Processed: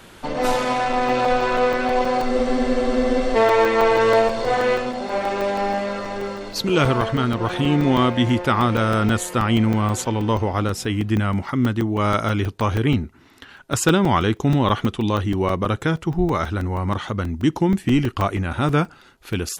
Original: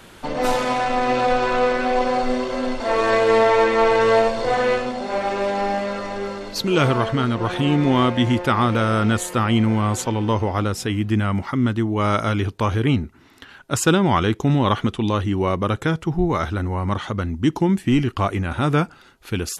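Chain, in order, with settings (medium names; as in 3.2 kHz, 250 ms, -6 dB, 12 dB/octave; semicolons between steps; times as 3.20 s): crackling interface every 0.16 s, samples 128, zero, from 0.93 s; spectral freeze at 2.32 s, 1.04 s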